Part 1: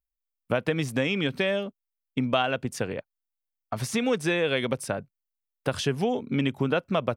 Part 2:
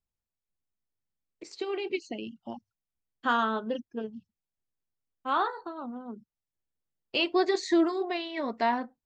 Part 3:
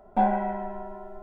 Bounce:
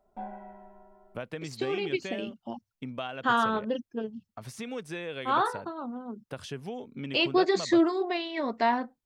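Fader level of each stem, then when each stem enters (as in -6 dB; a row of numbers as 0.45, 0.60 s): -12.0, +1.5, -17.5 dB; 0.65, 0.00, 0.00 s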